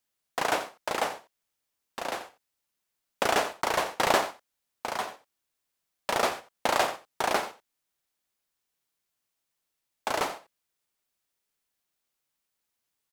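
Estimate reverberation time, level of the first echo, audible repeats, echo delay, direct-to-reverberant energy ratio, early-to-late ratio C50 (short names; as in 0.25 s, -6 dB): none, -14.0 dB, 1, 87 ms, none, none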